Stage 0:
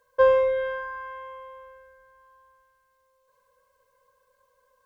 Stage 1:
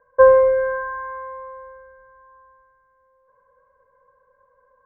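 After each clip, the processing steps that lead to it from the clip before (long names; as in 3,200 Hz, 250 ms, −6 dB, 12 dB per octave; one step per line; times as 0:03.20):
Butterworth low-pass 1,700 Hz 36 dB per octave
level +7 dB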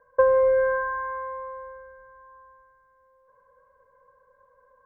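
downward compressor 6 to 1, threshold −16 dBFS, peak gain reduction 9.5 dB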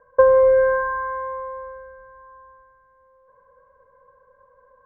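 high-frequency loss of the air 460 metres
level +6.5 dB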